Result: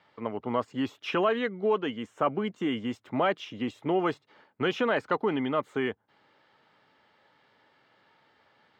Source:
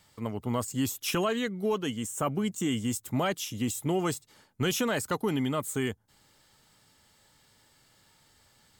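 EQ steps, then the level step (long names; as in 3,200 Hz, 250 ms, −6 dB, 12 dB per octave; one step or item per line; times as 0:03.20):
high-pass filter 120 Hz 12 dB per octave
high-frequency loss of the air 250 metres
bass and treble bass −12 dB, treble −10 dB
+5.5 dB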